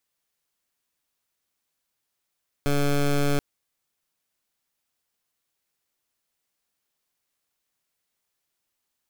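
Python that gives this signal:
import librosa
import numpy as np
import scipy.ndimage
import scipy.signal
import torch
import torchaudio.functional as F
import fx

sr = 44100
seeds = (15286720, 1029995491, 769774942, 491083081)

y = fx.pulse(sr, length_s=0.73, hz=143.0, level_db=-21.5, duty_pct=15)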